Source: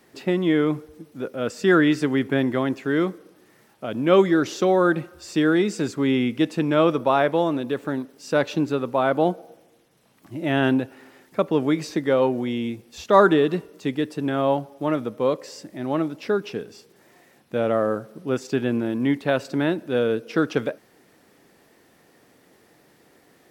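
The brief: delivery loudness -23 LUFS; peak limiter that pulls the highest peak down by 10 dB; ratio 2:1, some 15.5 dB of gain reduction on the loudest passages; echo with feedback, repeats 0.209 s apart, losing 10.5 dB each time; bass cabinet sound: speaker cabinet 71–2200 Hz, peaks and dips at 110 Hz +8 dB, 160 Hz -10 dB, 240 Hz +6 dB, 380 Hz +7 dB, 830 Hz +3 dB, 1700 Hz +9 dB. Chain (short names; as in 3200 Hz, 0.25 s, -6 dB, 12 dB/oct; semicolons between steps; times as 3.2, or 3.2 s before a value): compressor 2:1, threshold -40 dBFS; limiter -28 dBFS; speaker cabinet 71–2200 Hz, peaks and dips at 110 Hz +8 dB, 160 Hz -10 dB, 240 Hz +6 dB, 380 Hz +7 dB, 830 Hz +3 dB, 1700 Hz +9 dB; feedback echo 0.209 s, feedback 30%, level -10.5 dB; gain +12 dB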